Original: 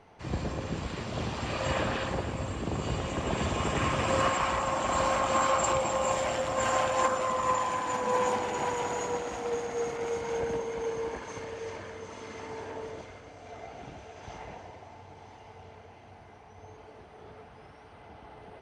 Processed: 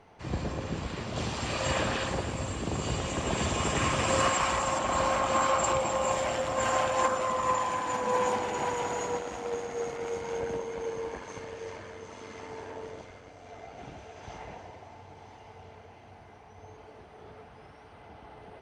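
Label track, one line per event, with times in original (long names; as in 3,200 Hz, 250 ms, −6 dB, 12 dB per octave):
1.160000	4.790000	high-shelf EQ 4,500 Hz +9.5 dB
9.190000	13.780000	amplitude modulation modulator 92 Hz, depth 25%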